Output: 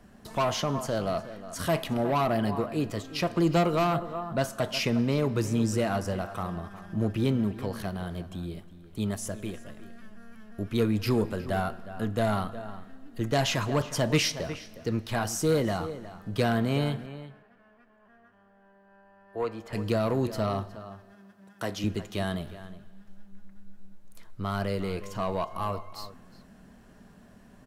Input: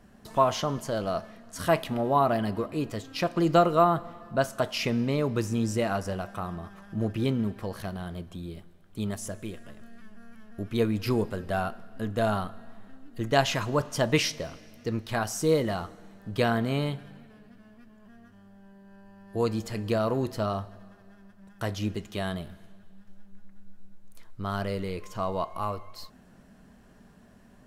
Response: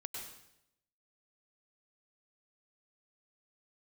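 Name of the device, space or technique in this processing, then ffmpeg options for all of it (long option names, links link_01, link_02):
one-band saturation: -filter_complex "[0:a]asettb=1/sr,asplit=3[link_01][link_02][link_03];[link_01]atrim=end=17.064[link_04];[link_02]atrim=start=17.06:end=19.73,asetpts=PTS-STARTPTS,afade=type=in:duration=0.004:curve=qsin,afade=type=out:start_time=2.666:duration=0.004:curve=qsin,acrossover=split=420 2500:gain=0.178 1 0.141[link_05][link_06][link_07];[link_05][link_06][link_07]amix=inputs=3:normalize=0[link_08];[link_03]atrim=start=19.726[link_09];[link_04][link_08]acrossfade=duration=0.004:curve1=hsin:curve2=qsin[link_10];[link_10][link_09]acrossfade=duration=0.004:curve1=qsin:curve2=hsin,asettb=1/sr,asplit=3[link_11][link_12][link_13];[link_11]atrim=end=20.774[link_14];[link_12]atrim=start=20.77:end=21.84,asetpts=PTS-STARTPTS,afade=type=in:duration=0.004:curve=qsin,afade=type=out:start_time=1.066:duration=0.004:curve=qsin,highpass=180[link_15];[link_13]atrim=start=21.836[link_16];[link_14][link_15]acrossfade=duration=0.004:curve1=hsin:curve2=qsin[link_17];[link_17][link_16]acrossfade=duration=0.004:curve1=qsin:curve2=hsin,asplit=2[link_18][link_19];[link_19]adelay=361.5,volume=-15dB,highshelf=frequency=4000:gain=-8.13[link_20];[link_18][link_20]amix=inputs=2:normalize=0,acrossover=split=290|3900[link_21][link_22][link_23];[link_22]asoftclip=type=tanh:threshold=-24dB[link_24];[link_21][link_24][link_23]amix=inputs=3:normalize=0,volume=1.5dB"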